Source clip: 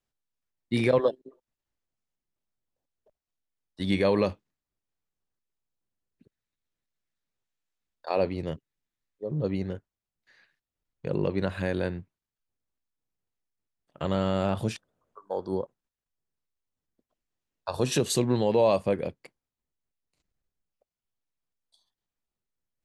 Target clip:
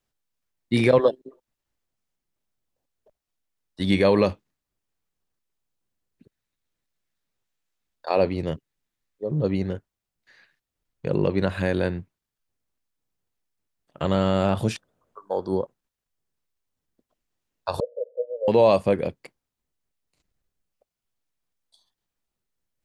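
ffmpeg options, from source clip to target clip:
-filter_complex "[0:a]asettb=1/sr,asplit=3[a][b][c];[a]atrim=end=17.804[d];[b]atrim=start=17.8:end=18.48,asetpts=PTS-STARTPTS,afade=t=in:d=0.004:c=qsin,afade=t=out:st=0.676:d=0.004:c=qsin,asuperpass=centerf=540:order=8:qfactor=3.6[e];[c]atrim=start=18.476[f];[d][e]acrossfade=d=0.004:c1=hsin:c2=qsin[g];[g][f]acrossfade=d=0.004:c1=qsin:c2=hsin,volume=5dB"

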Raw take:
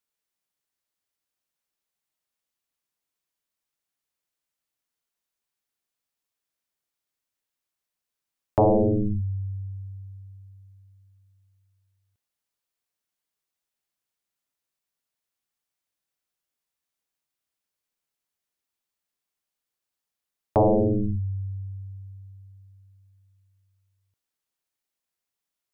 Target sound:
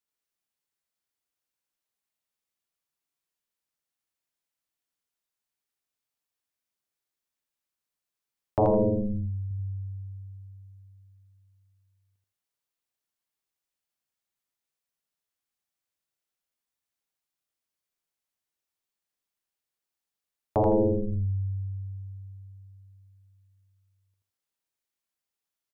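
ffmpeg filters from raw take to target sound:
-filter_complex "[0:a]asettb=1/sr,asplit=3[a][b][c];[a]atrim=end=8.594[d];[b]atrim=start=8.59:end=9.51,asetpts=PTS-STARTPTS,afade=t=in:d=0.004:c=qsin,afade=t=out:st=0.916:d=0.004:c=qsin,asplit=2[e][f];[f]adelay=35,volume=-4dB[g];[e][g]amix=inputs=2:normalize=0,atrim=end_sample=40572[h];[c]atrim=start=9.506[i];[d][h]acrossfade=d=0.004:c1=hsin:c2=qsin[j];[j][i]acrossfade=d=0.004:c1=qsin:c2=hsin,aecho=1:1:82|164|246:0.708|0.163|0.0375,volume=-4.5dB"

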